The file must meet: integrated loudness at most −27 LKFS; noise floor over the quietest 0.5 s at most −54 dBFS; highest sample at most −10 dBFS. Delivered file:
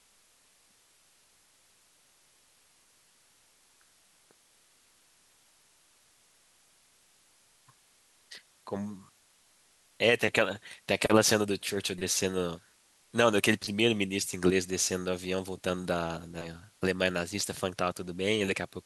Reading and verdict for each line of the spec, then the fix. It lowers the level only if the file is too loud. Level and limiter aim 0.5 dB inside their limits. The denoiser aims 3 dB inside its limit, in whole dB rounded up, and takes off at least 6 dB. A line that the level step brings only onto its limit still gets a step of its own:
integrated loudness −29.0 LKFS: in spec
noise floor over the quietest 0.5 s −65 dBFS: in spec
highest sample −7.0 dBFS: out of spec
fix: brickwall limiter −10.5 dBFS

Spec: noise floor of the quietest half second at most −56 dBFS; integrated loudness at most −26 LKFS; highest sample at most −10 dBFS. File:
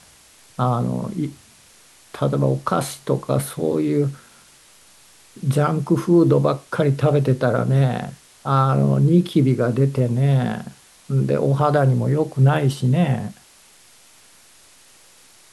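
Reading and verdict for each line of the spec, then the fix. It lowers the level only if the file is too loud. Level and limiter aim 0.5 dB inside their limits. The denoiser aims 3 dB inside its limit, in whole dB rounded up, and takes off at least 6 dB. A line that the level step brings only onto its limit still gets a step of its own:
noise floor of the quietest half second −51 dBFS: out of spec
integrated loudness −19.5 LKFS: out of spec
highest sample −6.0 dBFS: out of spec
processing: level −7 dB

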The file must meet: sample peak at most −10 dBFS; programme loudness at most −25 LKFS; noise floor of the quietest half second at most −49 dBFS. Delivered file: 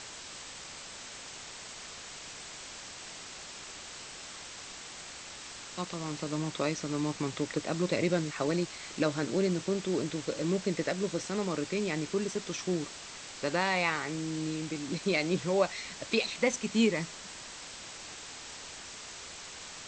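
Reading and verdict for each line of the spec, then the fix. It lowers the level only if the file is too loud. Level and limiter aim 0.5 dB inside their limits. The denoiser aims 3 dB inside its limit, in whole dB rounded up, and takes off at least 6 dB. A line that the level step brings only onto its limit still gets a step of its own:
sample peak −14.0 dBFS: in spec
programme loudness −34.0 LKFS: in spec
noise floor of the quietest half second −45 dBFS: out of spec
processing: broadband denoise 7 dB, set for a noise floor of −45 dBFS

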